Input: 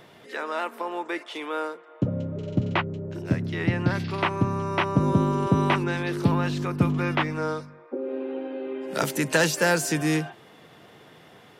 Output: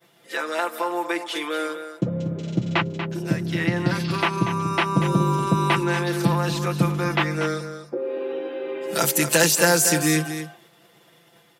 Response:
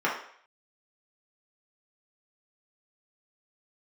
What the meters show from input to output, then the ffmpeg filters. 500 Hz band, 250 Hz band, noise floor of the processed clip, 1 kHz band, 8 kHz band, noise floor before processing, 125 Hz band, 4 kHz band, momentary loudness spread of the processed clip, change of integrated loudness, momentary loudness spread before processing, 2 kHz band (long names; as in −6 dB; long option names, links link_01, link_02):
+3.0 dB, +2.0 dB, −56 dBFS, +3.5 dB, +10.5 dB, −51 dBFS, +2.0 dB, +6.5 dB, 12 LU, +3.5 dB, 11 LU, +3.5 dB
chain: -filter_complex "[0:a]agate=range=-33dB:threshold=-42dB:ratio=3:detection=peak,lowshelf=frequency=95:gain=-6,aecho=1:1:5.9:0.91,asplit=2[link_01][link_02];[link_02]acompressor=threshold=-27dB:ratio=6,volume=-2.5dB[link_03];[link_01][link_03]amix=inputs=2:normalize=0,crystalizer=i=2:c=0,asplit=2[link_04][link_05];[link_05]aecho=0:1:238:0.316[link_06];[link_04][link_06]amix=inputs=2:normalize=0,volume=-3dB"